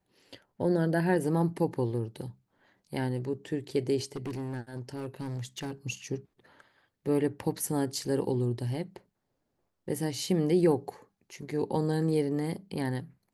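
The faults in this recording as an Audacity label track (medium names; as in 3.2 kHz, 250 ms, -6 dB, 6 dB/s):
4.160000	5.710000	clipped -32 dBFS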